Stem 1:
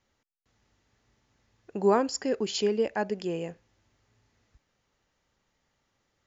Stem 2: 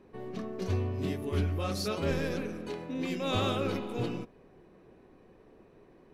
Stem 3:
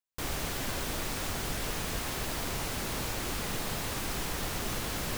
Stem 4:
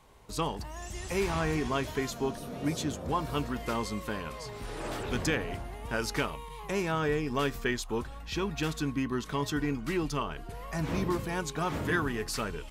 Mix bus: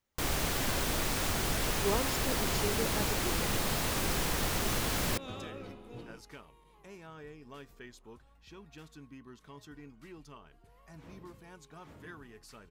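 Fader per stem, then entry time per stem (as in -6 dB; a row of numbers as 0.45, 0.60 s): -10.0, -14.0, +2.5, -19.5 dB; 0.00, 1.95, 0.00, 0.15 s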